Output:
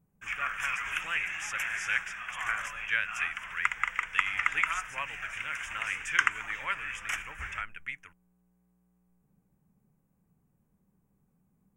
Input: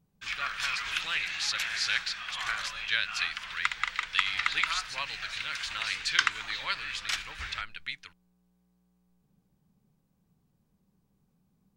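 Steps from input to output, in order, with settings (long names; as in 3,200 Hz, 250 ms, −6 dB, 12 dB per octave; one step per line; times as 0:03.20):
dynamic equaliser 3,200 Hz, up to +4 dB, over −40 dBFS, Q 0.71
Butterworth band-reject 4,200 Hz, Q 0.89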